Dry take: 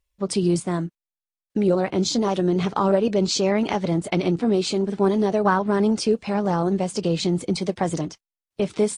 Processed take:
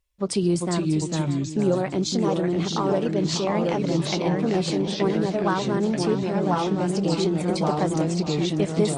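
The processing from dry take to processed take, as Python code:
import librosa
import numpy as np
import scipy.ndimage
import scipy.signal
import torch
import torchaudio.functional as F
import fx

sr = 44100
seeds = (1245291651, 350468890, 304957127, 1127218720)

y = fx.echo_pitch(x, sr, ms=369, semitones=-2, count=2, db_per_echo=-3.0)
y = fx.rider(y, sr, range_db=4, speed_s=0.5)
y = fx.echo_feedback(y, sr, ms=594, feedback_pct=49, wet_db=-13.0)
y = y * librosa.db_to_amplitude(-3.5)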